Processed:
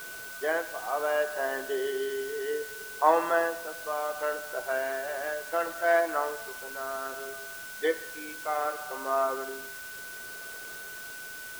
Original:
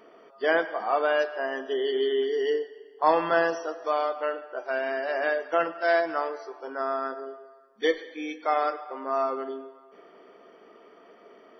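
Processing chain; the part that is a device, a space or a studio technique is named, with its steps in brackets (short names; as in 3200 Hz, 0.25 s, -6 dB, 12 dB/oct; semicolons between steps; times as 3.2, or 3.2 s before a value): shortwave radio (BPF 330–2500 Hz; tremolo 0.66 Hz, depth 56%; whine 1500 Hz -41 dBFS; white noise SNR 14 dB)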